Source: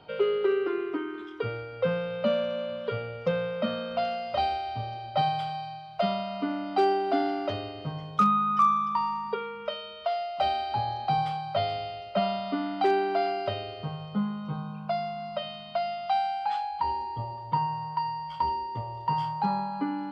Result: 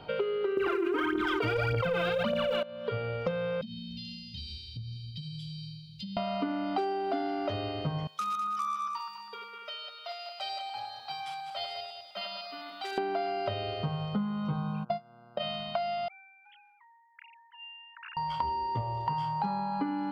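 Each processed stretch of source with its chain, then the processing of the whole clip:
0.57–2.63 phaser 1.7 Hz, delay 3.3 ms, feedback 77% + fast leveller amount 100%
3.61–6.17 elliptic band-stop 200–3700 Hz, stop band 60 dB + compressor 10:1, threshold -42 dBFS
8.07–12.98 regenerating reverse delay 0.101 s, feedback 62%, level -5 dB + differentiator
14.83–15.39 gate -28 dBFS, range -31 dB + bell 290 Hz +7.5 dB 2.4 oct + buzz 120 Hz, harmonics 13, -64 dBFS -2 dB/oct
16.08–18.17 sine-wave speech + steep high-pass 1800 Hz + sustainer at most 33 dB/s
whole clip: compressor 6:1, threshold -34 dBFS; low shelf 74 Hz +5.5 dB; gain +5 dB

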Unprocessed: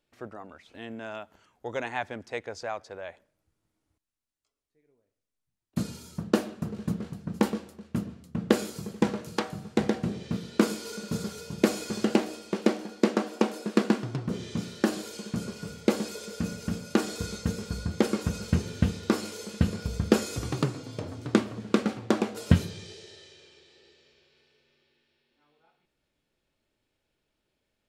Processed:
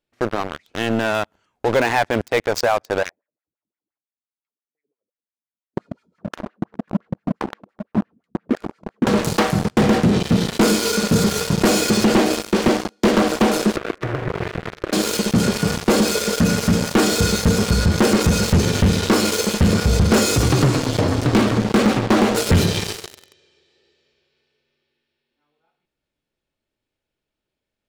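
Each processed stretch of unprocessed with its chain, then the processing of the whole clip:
3.03–9.07 compressor 2:1, threshold -31 dBFS + wah 5.8 Hz 210–2100 Hz, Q 3.9
12.68–13.22 hard clip -14.5 dBFS + three-band expander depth 70%
13.76–14.93 CVSD 16 kbps + compressor 8:1, threshold -34 dBFS + fixed phaser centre 860 Hz, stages 6
whole clip: high shelf 8300 Hz -3.5 dB; sample leveller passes 5; maximiser +14.5 dB; gain -8.5 dB

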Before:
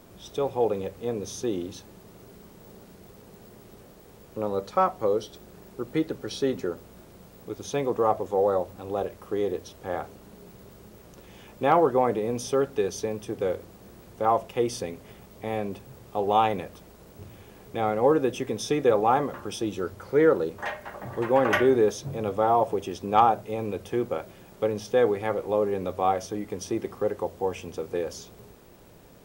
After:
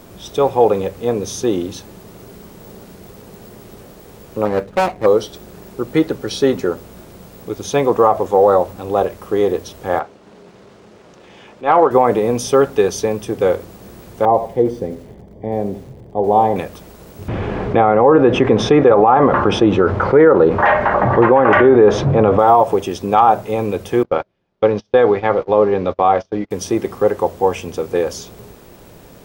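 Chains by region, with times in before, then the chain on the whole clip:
4.45–5.06 median filter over 41 samples + Doppler distortion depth 0.25 ms
9.99–11.91 HPF 320 Hz 6 dB/oct + air absorption 100 m + transient shaper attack -10 dB, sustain -4 dB
14.25–16.56 running mean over 33 samples + lo-fi delay 86 ms, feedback 35%, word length 8-bit, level -13 dB
17.28–22.39 LPF 2000 Hz + fast leveller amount 50%
24.03–26.51 gate -35 dBFS, range -31 dB + LPF 5000 Hz 24 dB/oct
whole clip: dynamic EQ 1000 Hz, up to +5 dB, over -35 dBFS, Q 0.94; maximiser +11.5 dB; gain -1 dB

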